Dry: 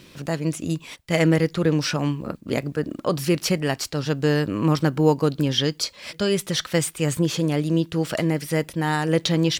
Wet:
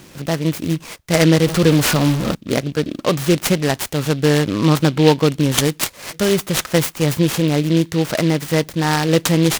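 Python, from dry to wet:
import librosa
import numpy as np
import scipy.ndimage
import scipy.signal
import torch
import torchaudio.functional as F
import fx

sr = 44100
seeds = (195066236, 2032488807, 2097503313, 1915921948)

y = fx.zero_step(x, sr, step_db=-24.5, at=(1.46, 2.35))
y = fx.noise_mod_delay(y, sr, seeds[0], noise_hz=2900.0, depth_ms=0.068)
y = y * librosa.db_to_amplitude(5.5)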